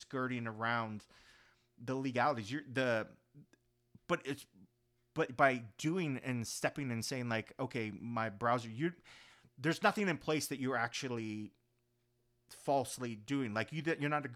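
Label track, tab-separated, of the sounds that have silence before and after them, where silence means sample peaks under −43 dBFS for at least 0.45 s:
1.830000	3.030000	sound
4.090000	4.420000	sound
5.160000	8.910000	sound
9.640000	11.460000	sound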